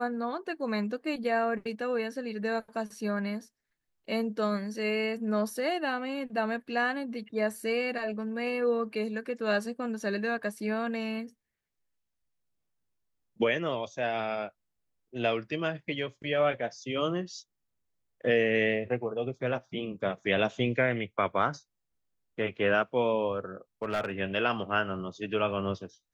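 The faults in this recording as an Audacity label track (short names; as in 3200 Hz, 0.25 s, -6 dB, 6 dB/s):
23.820000	24.110000	clipped -25 dBFS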